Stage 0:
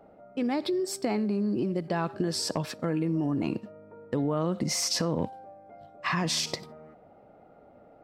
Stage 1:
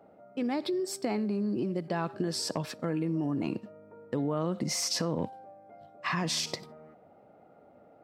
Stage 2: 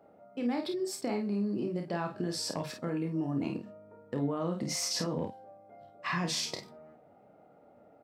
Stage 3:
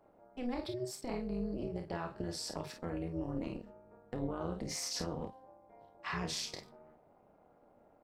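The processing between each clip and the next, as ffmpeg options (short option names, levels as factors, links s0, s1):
-af "highpass=90,volume=0.75"
-af "aecho=1:1:29|50:0.473|0.447,volume=0.668"
-af "tremolo=f=250:d=0.857,volume=0.794"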